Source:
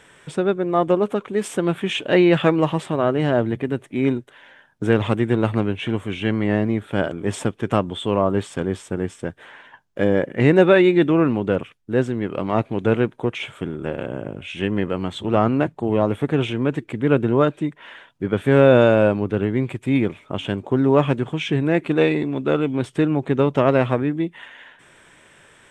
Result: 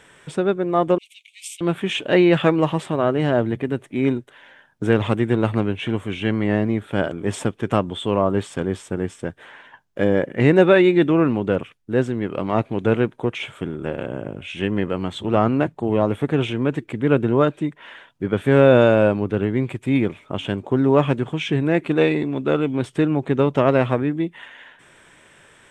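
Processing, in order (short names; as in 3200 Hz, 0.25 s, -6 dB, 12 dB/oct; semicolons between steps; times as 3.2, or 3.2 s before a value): 0.98–1.61 steep high-pass 2200 Hz 96 dB/oct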